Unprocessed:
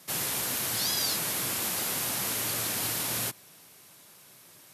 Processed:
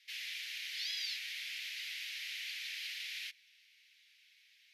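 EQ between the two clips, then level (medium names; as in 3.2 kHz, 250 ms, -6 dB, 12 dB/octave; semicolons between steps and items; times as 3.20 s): steep high-pass 2 kHz 48 dB/octave; distance through air 280 m; +2.0 dB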